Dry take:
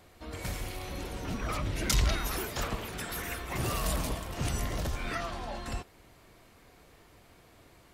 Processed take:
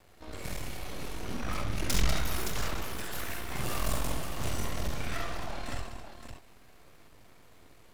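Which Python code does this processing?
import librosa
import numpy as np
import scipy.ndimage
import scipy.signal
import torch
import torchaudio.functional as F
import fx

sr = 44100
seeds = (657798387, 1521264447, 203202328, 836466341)

y = np.maximum(x, 0.0)
y = fx.echo_multitap(y, sr, ms=(48, 69, 193, 272, 505, 568), db=(-5.0, -6.5, -8.5, -13.0, -18.0, -7.0))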